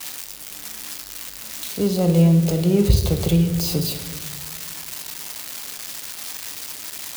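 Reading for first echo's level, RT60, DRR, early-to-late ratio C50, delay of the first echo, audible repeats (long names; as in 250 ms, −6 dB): no echo audible, 1.5 s, 6.0 dB, 10.0 dB, no echo audible, no echo audible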